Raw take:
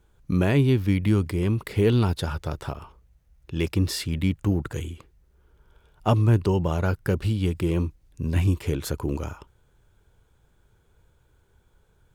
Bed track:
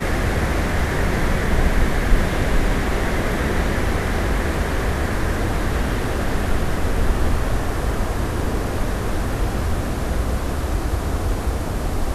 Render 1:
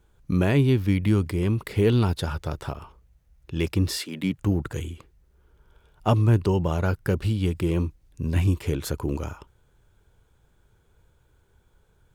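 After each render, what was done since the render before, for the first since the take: 3.97–4.37 HPF 350 Hz -> 110 Hz 24 dB/oct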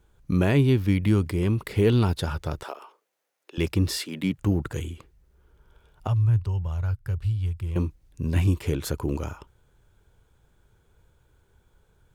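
2.63–3.58 HPF 380 Hz 24 dB/oct; 6.07–7.76 EQ curve 110 Hz 0 dB, 230 Hz -24 dB, 1000 Hz -12 dB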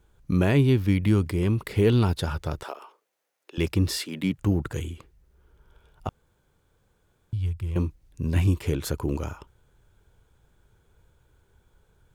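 6.09–7.33 room tone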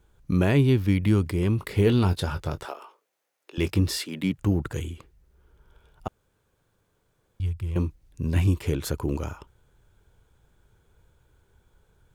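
1.57–3.8 doubler 21 ms -11 dB; 6.08–7.4 room tone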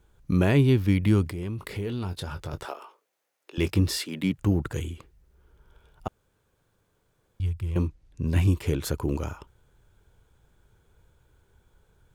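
1.28–2.53 compressor 2.5:1, threshold -33 dBFS; 7.87–8.27 air absorption 51 m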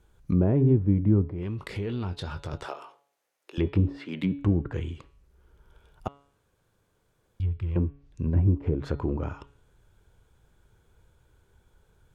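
treble ducked by the level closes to 610 Hz, closed at -20.5 dBFS; de-hum 141 Hz, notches 31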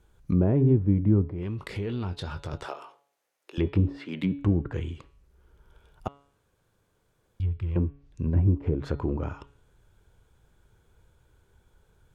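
nothing audible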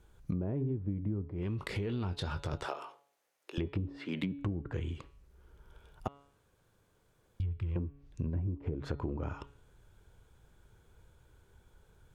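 compressor 12:1, threshold -31 dBFS, peak gain reduction 15.5 dB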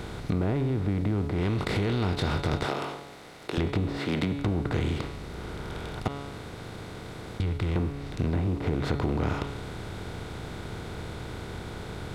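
per-bin compression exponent 0.4; sample leveller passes 1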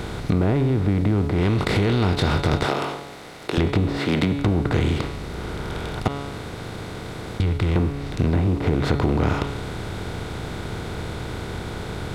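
gain +7 dB

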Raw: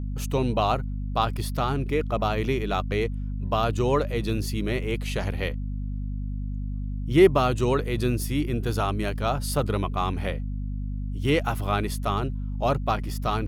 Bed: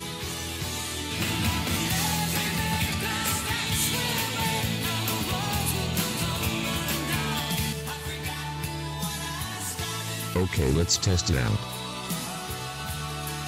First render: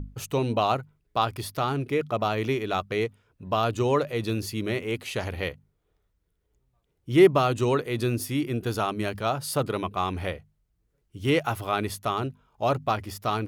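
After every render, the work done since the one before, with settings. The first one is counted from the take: notches 50/100/150/200/250 Hz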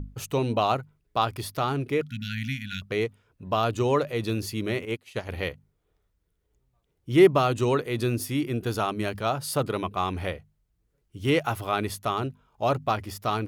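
2.08–2.82 brick-wall FIR band-stop 270–1400 Hz; 4.85–5.29 upward expander 2.5:1, over -39 dBFS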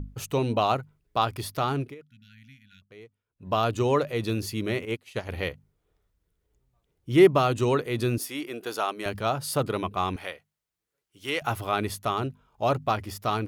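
1.81–3.49 dip -21 dB, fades 0.14 s; 8.18–9.06 HPF 430 Hz; 10.16–11.42 HPF 1100 Hz 6 dB/oct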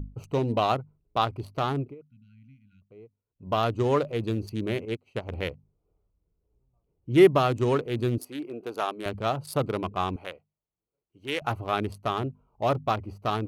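Wiener smoothing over 25 samples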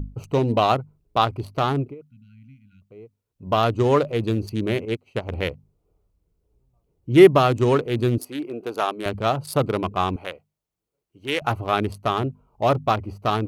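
gain +5.5 dB

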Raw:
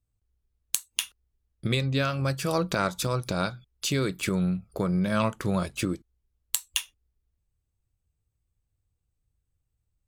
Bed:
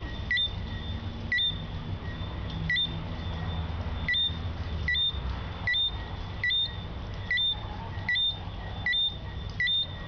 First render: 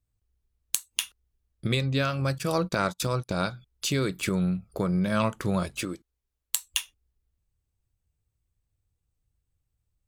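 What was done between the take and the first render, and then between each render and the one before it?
2.38–3.47 gate -35 dBFS, range -27 dB; 5.82–6.56 low shelf 280 Hz -10 dB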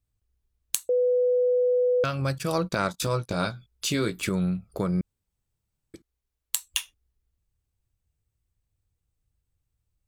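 0.89–2.04 bleep 496 Hz -19 dBFS; 2.92–4.22 doubler 18 ms -6.5 dB; 5.01–5.94 room tone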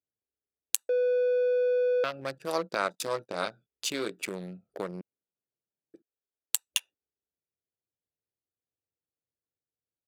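Wiener smoothing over 41 samples; HPF 440 Hz 12 dB/oct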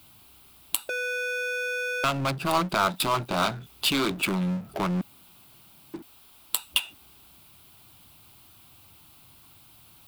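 fixed phaser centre 1800 Hz, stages 6; power-law curve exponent 0.5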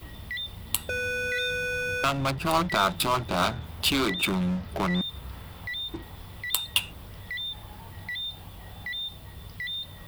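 add bed -7 dB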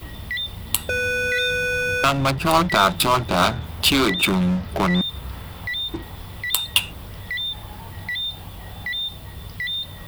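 gain +7 dB; limiter -3 dBFS, peak gain reduction 2 dB

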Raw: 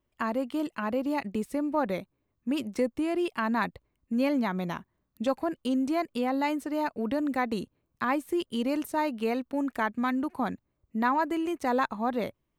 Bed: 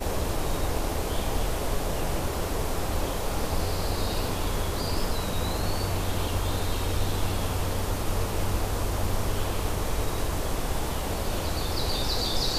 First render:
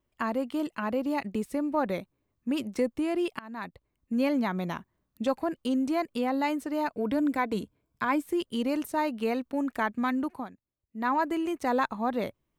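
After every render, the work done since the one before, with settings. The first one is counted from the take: 3.39–4.15 fade in, from -23 dB; 6.94–8.23 ripple EQ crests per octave 1.7, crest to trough 7 dB; 10.28–11.13 dip -15.5 dB, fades 0.21 s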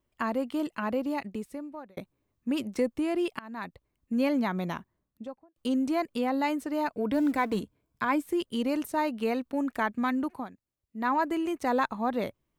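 0.93–1.97 fade out; 4.72–5.56 studio fade out; 7.14–7.6 G.711 law mismatch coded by mu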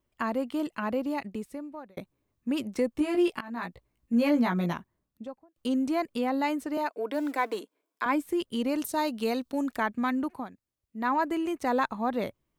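2.93–4.73 doubler 17 ms -2 dB; 6.77–8.06 HPF 330 Hz 24 dB/oct; 8.78–9.76 resonant high shelf 3000 Hz +6 dB, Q 1.5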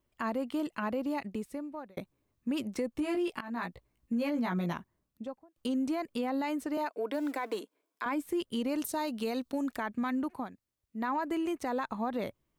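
limiter -22 dBFS, peak gain reduction 8 dB; compressor 1.5:1, threshold -33 dBFS, peak gain reduction 3 dB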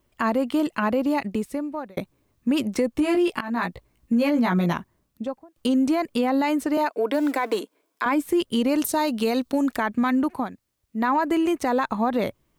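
gain +10.5 dB

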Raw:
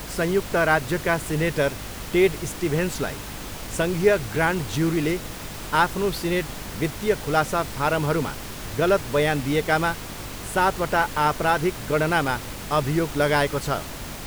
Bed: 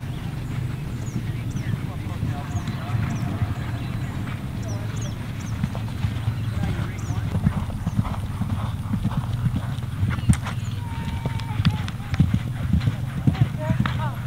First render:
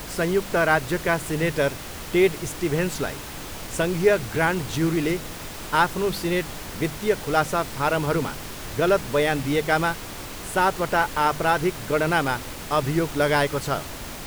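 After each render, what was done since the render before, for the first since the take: de-hum 50 Hz, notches 5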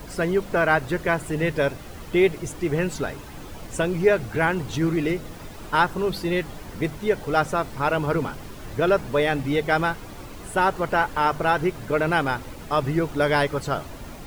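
denoiser 10 dB, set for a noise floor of -36 dBFS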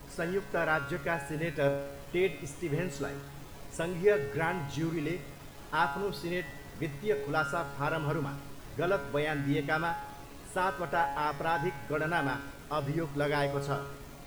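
in parallel at -10 dB: requantised 6-bit, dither none; on the sum: resonator 140 Hz, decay 0.85 s, harmonics all, mix 80%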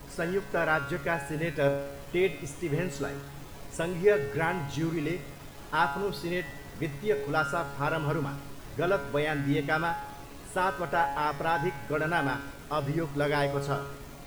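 gain +2.5 dB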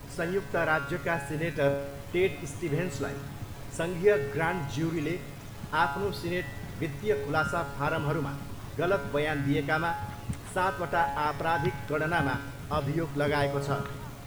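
add bed -17 dB

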